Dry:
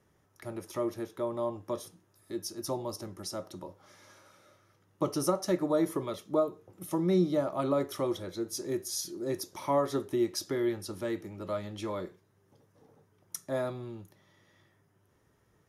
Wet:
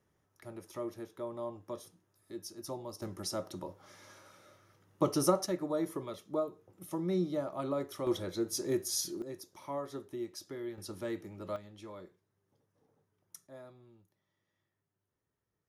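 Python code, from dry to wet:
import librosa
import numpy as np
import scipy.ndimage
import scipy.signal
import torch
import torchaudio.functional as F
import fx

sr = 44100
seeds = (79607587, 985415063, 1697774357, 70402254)

y = fx.gain(x, sr, db=fx.steps((0.0, -7.0), (3.02, 1.0), (5.46, -6.0), (8.07, 1.0), (9.22, -11.0), (10.78, -4.0), (11.56, -12.0), (13.47, -18.5)))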